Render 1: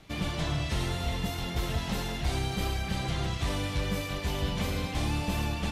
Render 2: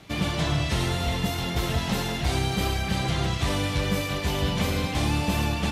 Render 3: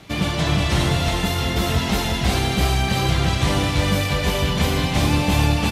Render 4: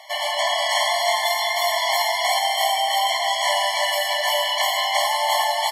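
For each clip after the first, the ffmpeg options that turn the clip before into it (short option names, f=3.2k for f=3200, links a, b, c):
-af "highpass=61,volume=6dB"
-af "aecho=1:1:361:0.668,volume=4.5dB"
-af "afftfilt=real='re*eq(mod(floor(b*sr/1024/580),2),1)':imag='im*eq(mod(floor(b*sr/1024/580),2),1)':win_size=1024:overlap=0.75,volume=7dB"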